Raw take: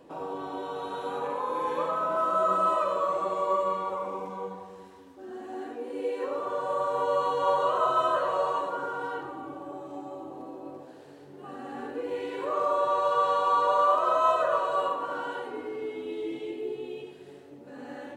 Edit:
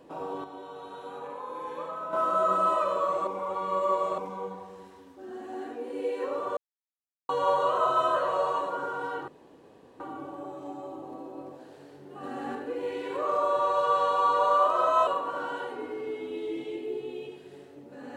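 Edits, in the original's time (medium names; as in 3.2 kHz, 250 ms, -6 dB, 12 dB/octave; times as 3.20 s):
0.44–2.13 s: gain -7.5 dB
3.27–4.18 s: reverse
6.57–7.29 s: mute
9.28 s: insert room tone 0.72 s
11.51–11.83 s: gain +3.5 dB
14.35–14.82 s: delete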